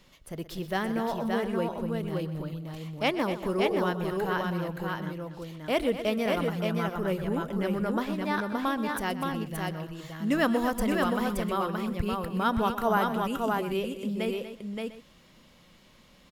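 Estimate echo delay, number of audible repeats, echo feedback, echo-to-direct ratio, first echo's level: 125 ms, 5, repeats not evenly spaced, −2.5 dB, −14.0 dB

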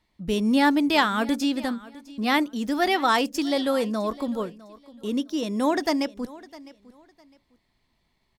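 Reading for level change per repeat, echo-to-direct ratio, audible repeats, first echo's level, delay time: −12.0 dB, −19.5 dB, 2, −20.0 dB, 656 ms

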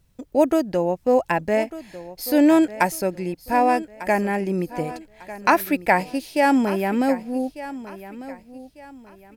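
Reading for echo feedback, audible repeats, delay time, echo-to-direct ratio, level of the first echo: 32%, 2, 1,198 ms, −15.0 dB, −15.5 dB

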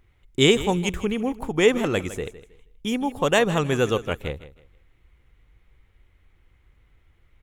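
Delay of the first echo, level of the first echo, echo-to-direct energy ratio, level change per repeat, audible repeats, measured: 159 ms, −15.0 dB, −14.5 dB, −11.5 dB, 2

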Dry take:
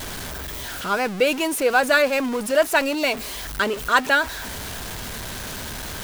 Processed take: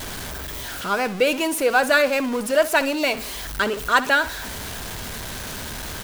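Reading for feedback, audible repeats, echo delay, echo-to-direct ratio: 33%, 2, 62 ms, −15.5 dB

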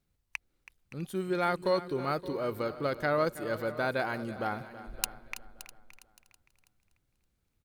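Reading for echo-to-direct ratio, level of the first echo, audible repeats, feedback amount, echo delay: −12.0 dB, −15.5 dB, 7, repeats not evenly spaced, 326 ms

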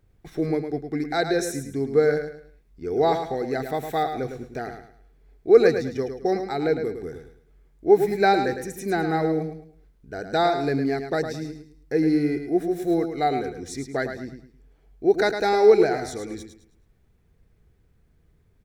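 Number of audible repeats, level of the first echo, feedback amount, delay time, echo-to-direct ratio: 3, −8.0 dB, 31%, 107 ms, −7.5 dB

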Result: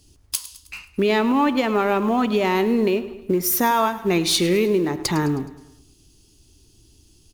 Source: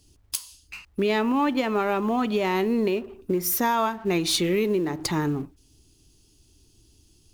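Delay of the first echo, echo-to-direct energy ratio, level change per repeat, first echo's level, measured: 105 ms, −14.5 dB, −6.0 dB, −16.0 dB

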